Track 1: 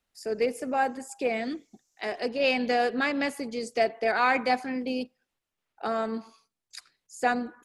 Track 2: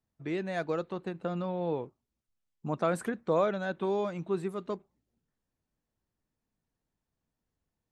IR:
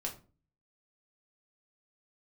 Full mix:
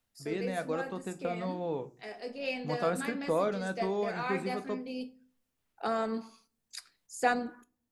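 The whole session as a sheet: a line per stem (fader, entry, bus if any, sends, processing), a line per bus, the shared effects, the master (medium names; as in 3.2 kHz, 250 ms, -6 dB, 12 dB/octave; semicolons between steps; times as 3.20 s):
-4.0 dB, 0.00 s, send -10.5 dB, auto duck -18 dB, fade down 0.40 s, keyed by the second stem
-5.5 dB, 0.00 s, send -6 dB, none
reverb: on, RT60 0.35 s, pre-delay 4 ms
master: treble shelf 7.7 kHz +7 dB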